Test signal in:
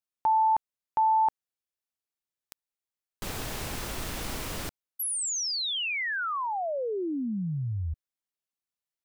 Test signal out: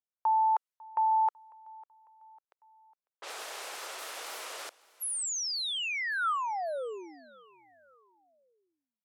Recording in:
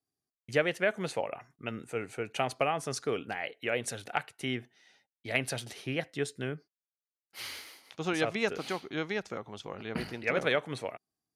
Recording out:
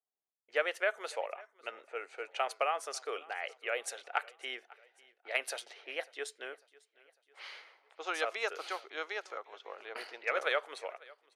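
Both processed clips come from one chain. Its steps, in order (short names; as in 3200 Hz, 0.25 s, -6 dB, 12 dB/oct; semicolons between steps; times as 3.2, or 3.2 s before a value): low-pass opened by the level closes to 1100 Hz, open at -29.5 dBFS; inverse Chebyshev high-pass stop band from 180 Hz, stop band 50 dB; dynamic EQ 1300 Hz, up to +6 dB, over -48 dBFS, Q 4.1; feedback echo 0.549 s, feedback 48%, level -23 dB; gain -3 dB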